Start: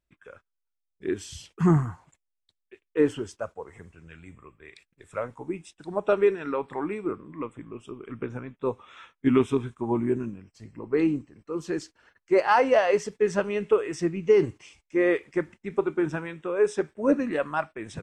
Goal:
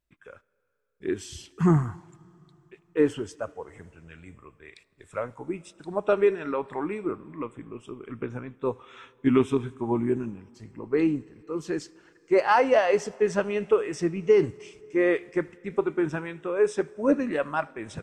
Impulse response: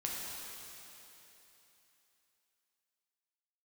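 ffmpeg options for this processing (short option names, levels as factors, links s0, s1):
-filter_complex "[0:a]asplit=2[s0][s1];[1:a]atrim=start_sample=2205,adelay=77[s2];[s1][s2]afir=irnorm=-1:irlink=0,volume=0.0531[s3];[s0][s3]amix=inputs=2:normalize=0"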